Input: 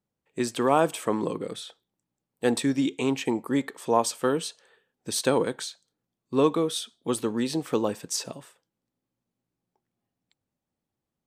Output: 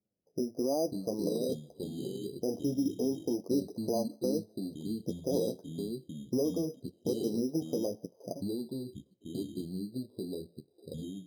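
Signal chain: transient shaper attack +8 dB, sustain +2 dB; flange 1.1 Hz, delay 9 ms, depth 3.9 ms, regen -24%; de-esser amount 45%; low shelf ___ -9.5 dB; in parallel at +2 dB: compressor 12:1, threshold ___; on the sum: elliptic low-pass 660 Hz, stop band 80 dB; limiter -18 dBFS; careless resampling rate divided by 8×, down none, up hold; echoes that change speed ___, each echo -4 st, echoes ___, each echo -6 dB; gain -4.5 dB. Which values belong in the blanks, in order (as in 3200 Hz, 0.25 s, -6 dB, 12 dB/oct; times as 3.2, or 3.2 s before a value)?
94 Hz, -31 dBFS, 0.447 s, 2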